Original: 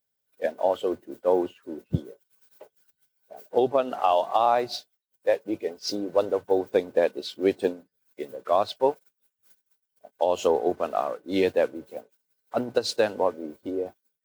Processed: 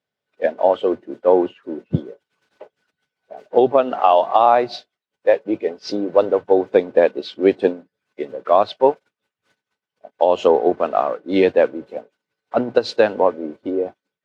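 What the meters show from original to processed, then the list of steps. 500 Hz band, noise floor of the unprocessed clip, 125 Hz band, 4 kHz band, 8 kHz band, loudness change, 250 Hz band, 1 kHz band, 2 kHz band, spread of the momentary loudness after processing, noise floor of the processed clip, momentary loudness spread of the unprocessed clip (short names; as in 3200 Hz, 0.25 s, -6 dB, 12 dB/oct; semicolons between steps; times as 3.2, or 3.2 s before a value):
+8.0 dB, -81 dBFS, +5.5 dB, +2.5 dB, n/a, +8.0 dB, +8.0 dB, +8.0 dB, +7.5 dB, 13 LU, under -85 dBFS, 13 LU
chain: BPF 120–3100 Hz; gain +8 dB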